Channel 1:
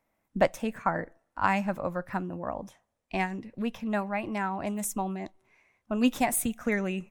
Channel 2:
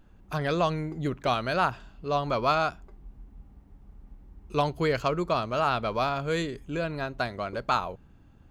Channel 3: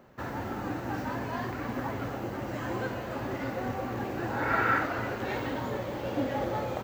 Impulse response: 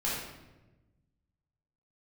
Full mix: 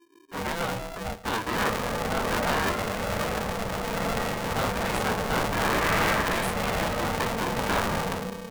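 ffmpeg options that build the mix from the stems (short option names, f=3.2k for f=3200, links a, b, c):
-filter_complex "[0:a]alimiter=limit=-18.5dB:level=0:latency=1:release=152,adelay=100,volume=-9dB[a];[1:a]adynamicequalizer=threshold=0.0126:dfrequency=740:dqfactor=0.74:tfrequency=740:tqfactor=0.74:attack=5:release=100:ratio=0.375:range=3.5:mode=boostabove:tftype=bell,flanger=delay=16:depth=7.5:speed=1.7,volume=-2dB,asplit=2[b][c];[c]volume=-22dB[d];[2:a]equalizer=f=150:t=o:w=0.35:g=15,adelay=1350,volume=0dB,asplit=2[e][f];[f]volume=-7.5dB[g];[3:a]atrim=start_sample=2205[h];[d][g]amix=inputs=2:normalize=0[i];[i][h]afir=irnorm=-1:irlink=0[j];[a][b][e][j]amix=inputs=4:normalize=0,afftdn=nr=21:nf=-46,afftfilt=real='re*lt(hypot(re,im),0.398)':imag='im*lt(hypot(re,im),0.398)':win_size=1024:overlap=0.75,aeval=exprs='val(0)*sgn(sin(2*PI*340*n/s))':c=same"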